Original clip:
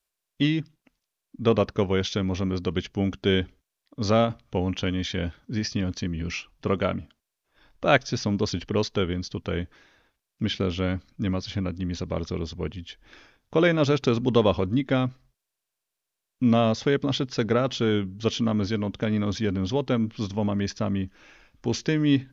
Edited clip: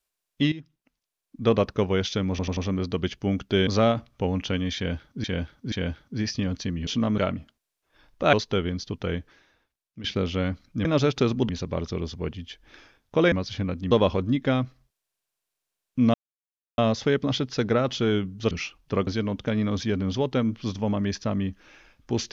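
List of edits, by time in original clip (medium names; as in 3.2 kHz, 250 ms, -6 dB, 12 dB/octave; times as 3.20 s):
0.52–1.49 s: fade in linear, from -14 dB
2.30 s: stutter 0.09 s, 4 plays
3.40–4.00 s: delete
5.09–5.57 s: loop, 3 plays
6.24–6.80 s: swap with 18.31–18.62 s
7.95–8.77 s: delete
9.54–10.48 s: fade out linear, to -15 dB
11.29–11.88 s: swap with 13.71–14.35 s
16.58 s: insert silence 0.64 s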